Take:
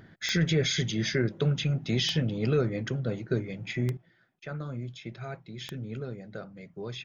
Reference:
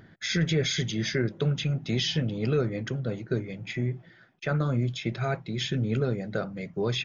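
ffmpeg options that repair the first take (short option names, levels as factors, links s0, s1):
-af "adeclick=t=4,asetnsamples=n=441:p=0,asendcmd='3.97 volume volume 10dB',volume=1"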